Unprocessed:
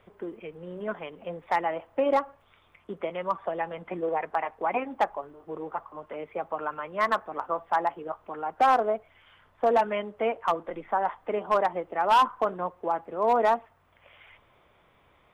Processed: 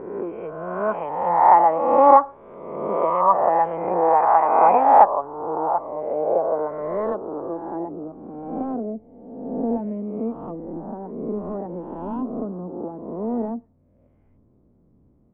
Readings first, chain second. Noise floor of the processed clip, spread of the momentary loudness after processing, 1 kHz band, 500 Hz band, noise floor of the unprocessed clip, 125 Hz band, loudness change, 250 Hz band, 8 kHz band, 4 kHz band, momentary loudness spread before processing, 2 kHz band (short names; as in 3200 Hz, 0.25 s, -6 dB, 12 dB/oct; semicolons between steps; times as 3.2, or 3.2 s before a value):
-59 dBFS, 19 LU, +8.0 dB, +6.5 dB, -63 dBFS, +9.5 dB, +7.5 dB, +10.5 dB, n/a, under -15 dB, 16 LU, -3.5 dB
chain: spectral swells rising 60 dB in 1.25 s; low-pass sweep 990 Hz -> 250 Hz, 5.2–8.21; gain +4 dB